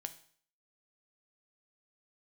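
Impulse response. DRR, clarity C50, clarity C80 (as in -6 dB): 8.0 dB, 14.0 dB, 18.0 dB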